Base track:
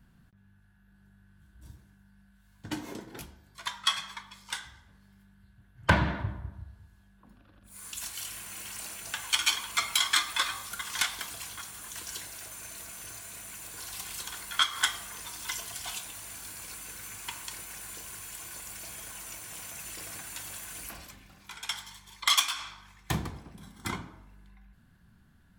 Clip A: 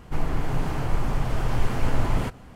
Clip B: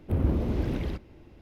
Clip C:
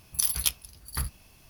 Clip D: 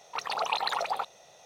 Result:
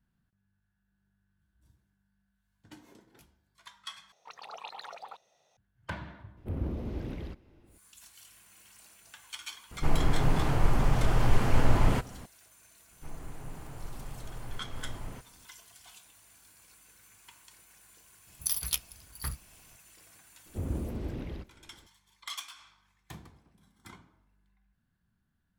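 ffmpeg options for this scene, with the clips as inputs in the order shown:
ffmpeg -i bed.wav -i cue0.wav -i cue1.wav -i cue2.wav -i cue3.wav -filter_complex "[2:a]asplit=2[link_01][link_02];[1:a]asplit=2[link_03][link_04];[0:a]volume=-16dB[link_05];[4:a]equalizer=frequency=11000:width_type=o:width=0.91:gain=-3[link_06];[link_05]asplit=2[link_07][link_08];[link_07]atrim=end=4.124[link_09];[link_06]atrim=end=1.45,asetpts=PTS-STARTPTS,volume=-14.5dB[link_10];[link_08]atrim=start=5.566[link_11];[link_01]atrim=end=1.41,asetpts=PTS-STARTPTS,volume=-8.5dB,afade=type=in:duration=0.004:curve=hsin,afade=type=out:start_time=1.406:duration=0.004:curve=hsin,adelay=6370[link_12];[link_03]atrim=end=2.55,asetpts=PTS-STARTPTS,afade=type=in:duration=0.004:curve=hsin,afade=type=out:start_time=2.546:duration=0.004:curve=hsin,adelay=9710[link_13];[link_04]atrim=end=2.55,asetpts=PTS-STARTPTS,volume=-17.5dB,afade=type=in:duration=0.004:curve=hsin,afade=type=out:start_time=2.546:duration=0.004:curve=hsin,adelay=12910[link_14];[3:a]atrim=end=1.49,asetpts=PTS-STARTPTS,volume=-5dB,afade=type=in:duration=0.004:curve=hsin,afade=type=out:start_time=1.486:duration=0.004:curve=hsin,adelay=18270[link_15];[link_02]atrim=end=1.41,asetpts=PTS-STARTPTS,volume=-8.5dB,afade=type=in:duration=0.004:curve=hsin,afade=type=out:start_time=1.406:duration=0.004:curve=hsin,adelay=20460[link_16];[link_09][link_10]acrossfade=duration=0.004:curve1=hsin:curve2=hsin[link_17];[link_17][link_11]acrossfade=duration=0.004:curve1=hsin:curve2=hsin[link_18];[link_18][link_12][link_13][link_14][link_15][link_16]amix=inputs=6:normalize=0" out.wav

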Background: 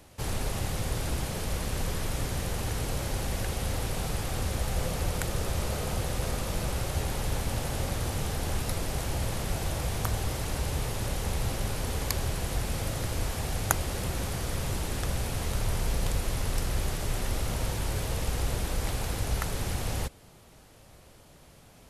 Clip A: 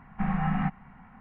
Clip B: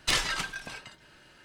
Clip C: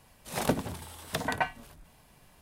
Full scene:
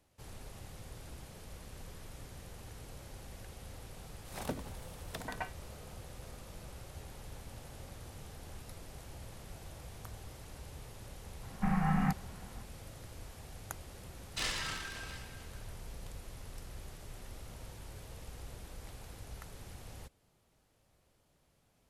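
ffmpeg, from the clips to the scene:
ffmpeg -i bed.wav -i cue0.wav -i cue1.wav -i cue2.wav -filter_complex "[0:a]volume=-18dB[link_01];[2:a]aecho=1:1:30|69|119.7|185.6|271.3|382.7|527.5|715.7:0.794|0.631|0.501|0.398|0.316|0.251|0.2|0.158[link_02];[3:a]atrim=end=2.41,asetpts=PTS-STARTPTS,volume=-11.5dB,afade=type=in:duration=0.004:curve=hsin,afade=type=out:start_time=2.406:duration=0.004:curve=hsin,adelay=4000[link_03];[1:a]atrim=end=1.2,asetpts=PTS-STARTPTS,volume=-3dB,afade=type=in:duration=0.004:curve=hsin,afade=type=out:start_time=1.196:duration=0.004:curve=hsin,adelay=11430[link_04];[link_02]atrim=end=1.44,asetpts=PTS-STARTPTS,volume=-12.5dB,afade=type=in:duration=0.004:curve=hsin,afade=type=out:start_time=1.436:duration=0.004:curve=hsin,adelay=14290[link_05];[link_01][link_03][link_04][link_05]amix=inputs=4:normalize=0" out.wav

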